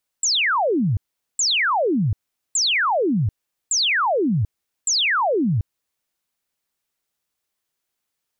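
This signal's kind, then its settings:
repeated falling chirps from 7,900 Hz, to 91 Hz, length 0.74 s sine, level −16.5 dB, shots 5, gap 0.42 s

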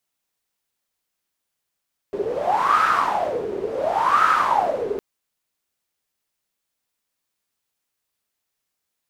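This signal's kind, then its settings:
wind from filtered noise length 2.86 s, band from 400 Hz, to 1,300 Hz, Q 10, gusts 2, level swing 9 dB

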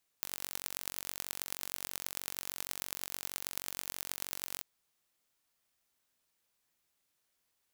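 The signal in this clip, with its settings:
impulse train 46.3 per second, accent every 5, −8 dBFS 4.39 s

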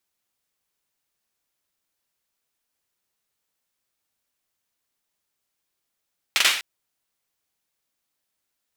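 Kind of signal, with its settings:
synth clap length 0.25 s, bursts 3, apart 43 ms, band 2,500 Hz, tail 0.49 s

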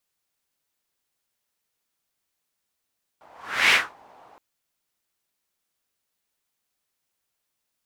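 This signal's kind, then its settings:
pass-by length 1.17 s, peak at 0:00.51, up 0.44 s, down 0.24 s, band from 820 Hz, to 2,300 Hz, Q 2.9, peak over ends 35 dB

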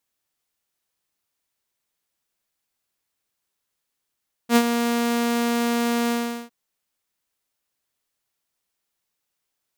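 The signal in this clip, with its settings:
note with an ADSR envelope saw 236 Hz, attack 70 ms, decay 61 ms, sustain −8.5 dB, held 1.60 s, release 406 ms −9 dBFS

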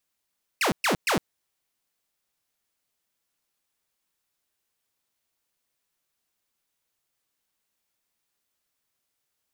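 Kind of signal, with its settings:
repeated falling chirps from 2,900 Hz, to 140 Hz, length 0.11 s saw, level −18 dB, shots 3, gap 0.12 s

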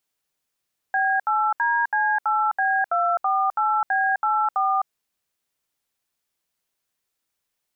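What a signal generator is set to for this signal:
touch tones "B8DC8B248B84", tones 258 ms, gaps 71 ms, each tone −21 dBFS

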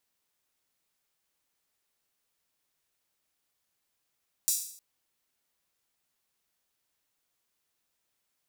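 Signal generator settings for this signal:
open synth hi-hat length 0.31 s, high-pass 6,400 Hz, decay 0.60 s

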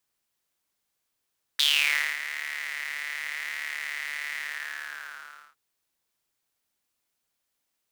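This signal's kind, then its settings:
subtractive patch with pulse-width modulation D2, detune 28 cents, noise −22 dB, filter highpass, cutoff 1,300 Hz, Q 7.4, filter envelope 1.5 octaves, filter decay 0.36 s, attack 2.8 ms, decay 0.58 s, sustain −15 dB, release 1.18 s, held 2.78 s, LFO 0.86 Hz, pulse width 45%, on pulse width 9%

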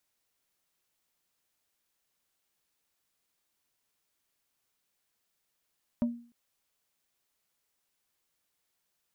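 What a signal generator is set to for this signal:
struck wood plate, length 0.30 s, lowest mode 237 Hz, decay 0.43 s, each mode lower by 10 dB, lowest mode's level −22 dB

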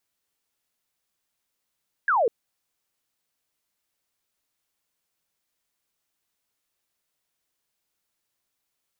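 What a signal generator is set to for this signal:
single falling chirp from 1,700 Hz, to 420 Hz, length 0.20 s sine, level −18 dB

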